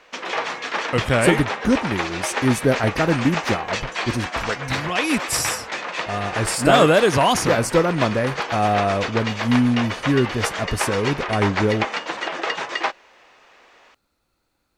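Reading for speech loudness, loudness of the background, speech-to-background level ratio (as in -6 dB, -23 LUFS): -21.0 LUFS, -26.5 LUFS, 5.5 dB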